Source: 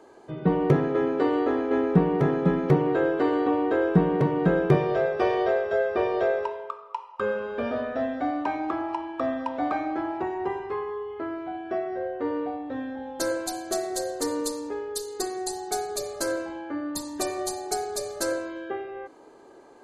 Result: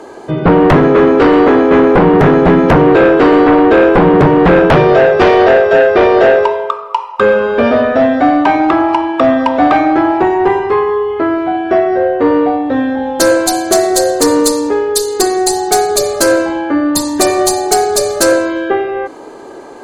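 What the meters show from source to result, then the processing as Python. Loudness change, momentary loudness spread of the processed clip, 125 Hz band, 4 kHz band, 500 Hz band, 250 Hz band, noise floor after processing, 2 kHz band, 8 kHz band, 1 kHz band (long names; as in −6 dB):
+16.5 dB, 7 LU, +11.0 dB, +18.0 dB, +17.0 dB, +16.0 dB, −30 dBFS, +18.5 dB, +18.0 dB, +18.0 dB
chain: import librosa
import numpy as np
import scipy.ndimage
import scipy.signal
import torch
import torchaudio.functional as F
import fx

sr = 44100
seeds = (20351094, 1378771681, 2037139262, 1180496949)

y = fx.fold_sine(x, sr, drive_db=12, ceiling_db=-6.5)
y = fx.hum_notches(y, sr, base_hz=60, count=2)
y = y * 10.0 ** (3.5 / 20.0)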